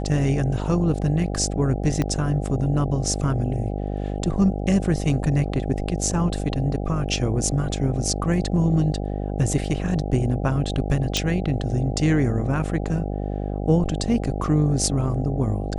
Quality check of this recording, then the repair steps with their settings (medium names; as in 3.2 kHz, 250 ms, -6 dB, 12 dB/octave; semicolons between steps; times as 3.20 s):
buzz 50 Hz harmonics 16 -27 dBFS
2.02 s: pop -11 dBFS
11.17 s: pop -7 dBFS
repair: de-click; de-hum 50 Hz, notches 16